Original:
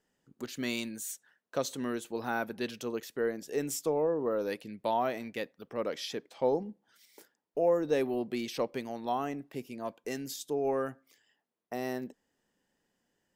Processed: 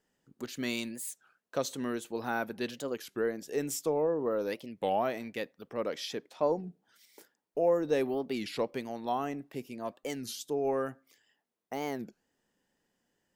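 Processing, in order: warped record 33 1/3 rpm, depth 250 cents

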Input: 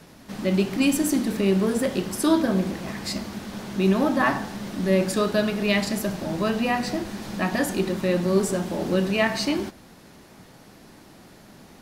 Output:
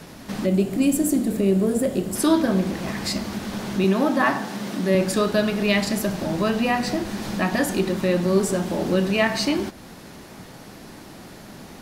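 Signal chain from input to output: in parallel at +2 dB: compression, threshold -35 dBFS, peak gain reduction 18.5 dB; 0.46–2.15 s: on the sum: time-frequency box 760–6600 Hz -8 dB; 3.84–4.95 s: high-pass 160 Hz 12 dB/octave

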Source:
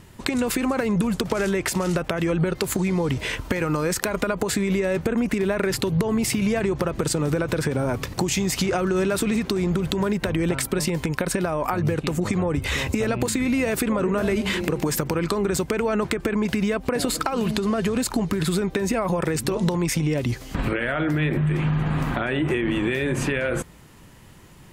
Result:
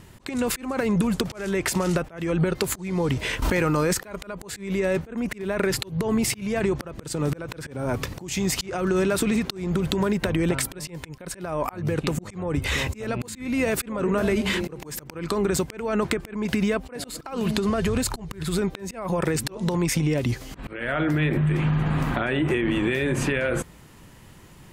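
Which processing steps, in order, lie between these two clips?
17.69–18.59 s: resonant low shelf 140 Hz +8 dB, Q 1.5; slow attack 268 ms; 3.42–3.93 s: level flattener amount 100%

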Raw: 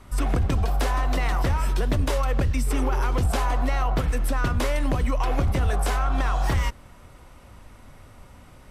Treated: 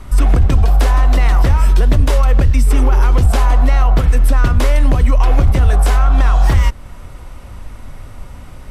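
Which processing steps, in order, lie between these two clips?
bass shelf 73 Hz +10.5 dB; in parallel at -2 dB: compression, threshold -26 dBFS, peak gain reduction 14 dB; on the sum: trim +4.5 dB

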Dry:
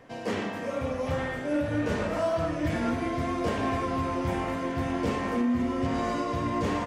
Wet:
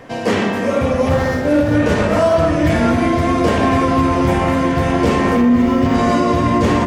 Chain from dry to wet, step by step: 1.09–1.75 s: median filter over 15 samples; feedback echo behind a low-pass 120 ms, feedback 75%, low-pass 460 Hz, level -8 dB; loudness maximiser +19 dB; 5.35–5.95 s: decimation joined by straight lines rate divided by 2×; trim -5 dB

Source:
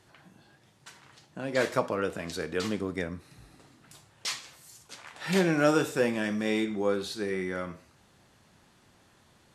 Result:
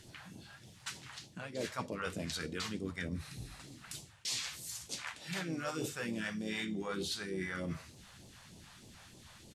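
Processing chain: phase shifter stages 2, 3.3 Hz, lowest notch 290–1500 Hz; reverse; compression 16:1, threshold -42 dBFS, peak gain reduction 19.5 dB; reverse; harmony voices -3 st -9 dB; hum notches 50/100/150 Hz; trim +7 dB

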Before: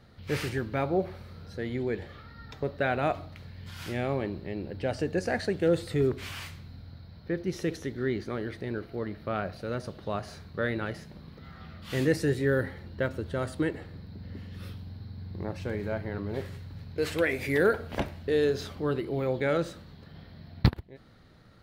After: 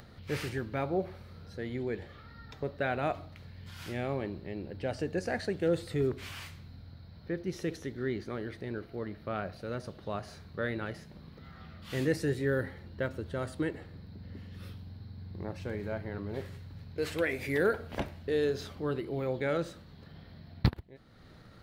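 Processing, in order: upward compressor, threshold -41 dBFS; trim -4 dB

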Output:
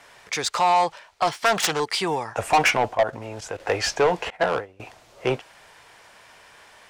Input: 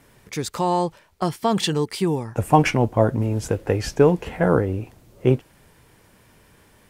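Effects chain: 1.27–1.80 s: self-modulated delay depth 0.4 ms; peaking EQ 690 Hz +4 dB 0.29 oct; 2.94–3.60 s: level held to a coarse grid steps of 14 dB; three-band isolator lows -20 dB, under 590 Hz, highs -17 dB, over 7.8 kHz; saturation -22 dBFS, distortion -7 dB; 4.30–4.80 s: upward expansion 2.5:1, over -41 dBFS; trim +9 dB

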